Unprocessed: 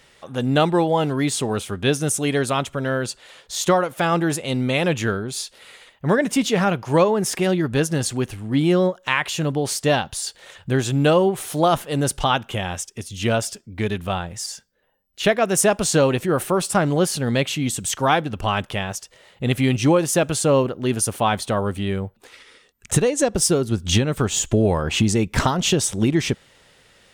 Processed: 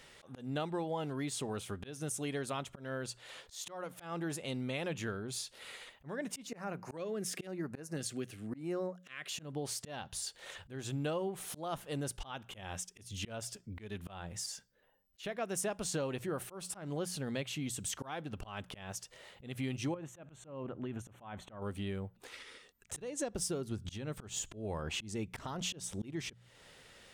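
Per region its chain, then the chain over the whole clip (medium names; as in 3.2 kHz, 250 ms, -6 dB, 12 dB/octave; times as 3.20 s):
6.47–9.31 s: high-pass 150 Hz + LFO notch square 1 Hz 910–3300 Hz
19.94–21.62 s: compression 12:1, threshold -21 dBFS + boxcar filter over 9 samples + peaking EQ 440 Hz -4.5 dB 0.38 oct
whole clip: hum notches 60/120/180 Hz; compression 2.5:1, threshold -37 dBFS; slow attack 182 ms; trim -4 dB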